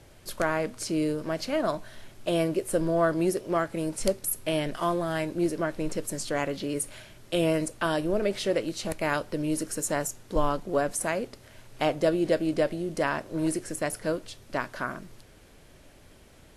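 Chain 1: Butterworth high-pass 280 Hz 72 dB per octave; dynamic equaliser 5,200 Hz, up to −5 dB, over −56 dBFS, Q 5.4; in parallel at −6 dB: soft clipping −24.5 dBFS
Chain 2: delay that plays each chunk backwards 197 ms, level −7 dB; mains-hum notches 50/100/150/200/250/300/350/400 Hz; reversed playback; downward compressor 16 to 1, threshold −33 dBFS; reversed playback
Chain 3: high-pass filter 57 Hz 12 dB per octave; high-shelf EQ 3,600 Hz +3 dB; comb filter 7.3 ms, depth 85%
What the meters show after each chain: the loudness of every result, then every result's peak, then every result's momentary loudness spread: −26.5, −38.0, −27.0 LKFS; −8.0, −21.5, −6.0 dBFS; 7, 6, 7 LU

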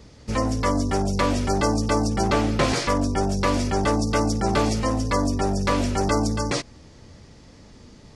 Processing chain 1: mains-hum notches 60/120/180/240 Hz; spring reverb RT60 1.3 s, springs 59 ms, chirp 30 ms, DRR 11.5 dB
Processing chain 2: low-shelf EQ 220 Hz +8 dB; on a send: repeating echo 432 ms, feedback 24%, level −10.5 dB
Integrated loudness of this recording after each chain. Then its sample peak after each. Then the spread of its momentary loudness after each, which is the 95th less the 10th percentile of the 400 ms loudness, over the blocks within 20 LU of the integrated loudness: −23.0, −19.5 LKFS; −8.0, −4.5 dBFS; 3, 5 LU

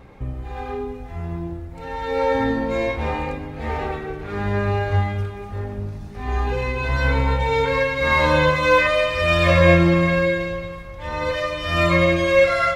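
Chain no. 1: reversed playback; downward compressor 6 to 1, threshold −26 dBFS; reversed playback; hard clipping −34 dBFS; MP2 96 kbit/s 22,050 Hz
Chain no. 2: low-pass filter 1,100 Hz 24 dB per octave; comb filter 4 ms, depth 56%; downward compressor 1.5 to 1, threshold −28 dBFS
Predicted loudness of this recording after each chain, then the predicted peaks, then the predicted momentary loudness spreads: −36.0, −26.0 LKFS; −31.5, −9.5 dBFS; 3, 12 LU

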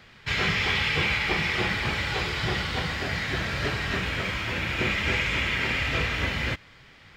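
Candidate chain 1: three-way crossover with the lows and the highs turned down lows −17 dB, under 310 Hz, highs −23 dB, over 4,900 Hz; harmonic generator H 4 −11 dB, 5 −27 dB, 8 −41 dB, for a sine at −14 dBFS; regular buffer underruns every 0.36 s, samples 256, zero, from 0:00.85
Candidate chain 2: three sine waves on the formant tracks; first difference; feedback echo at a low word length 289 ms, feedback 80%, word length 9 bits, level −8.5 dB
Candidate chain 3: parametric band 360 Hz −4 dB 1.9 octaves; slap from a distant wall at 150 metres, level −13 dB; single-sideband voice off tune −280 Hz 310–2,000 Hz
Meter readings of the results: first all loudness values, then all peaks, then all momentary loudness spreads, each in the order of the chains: −25.0, −34.0, −32.0 LKFS; −12.5, −22.0, −18.5 dBFS; 6, 8, 4 LU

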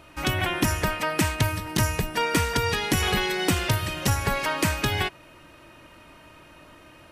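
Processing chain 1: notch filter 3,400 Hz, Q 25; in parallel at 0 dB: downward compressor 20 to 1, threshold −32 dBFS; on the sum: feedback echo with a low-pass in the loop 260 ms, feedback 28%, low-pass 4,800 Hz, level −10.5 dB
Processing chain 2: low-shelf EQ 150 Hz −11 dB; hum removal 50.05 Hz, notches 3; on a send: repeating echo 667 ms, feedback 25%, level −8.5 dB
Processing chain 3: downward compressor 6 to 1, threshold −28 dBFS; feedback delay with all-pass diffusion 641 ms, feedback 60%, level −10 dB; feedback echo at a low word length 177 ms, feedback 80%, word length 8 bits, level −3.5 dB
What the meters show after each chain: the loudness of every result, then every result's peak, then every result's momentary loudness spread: −22.5, −26.0, −29.0 LKFS; −8.0, −9.5, −13.5 dBFS; 5, 13, 13 LU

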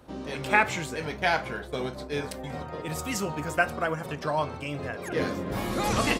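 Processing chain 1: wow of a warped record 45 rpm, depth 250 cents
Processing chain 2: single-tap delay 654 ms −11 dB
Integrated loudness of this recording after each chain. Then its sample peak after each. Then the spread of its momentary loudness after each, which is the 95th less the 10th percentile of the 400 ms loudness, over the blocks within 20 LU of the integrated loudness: −29.5, −29.0 LKFS; −6.0, −6.0 dBFS; 10, 10 LU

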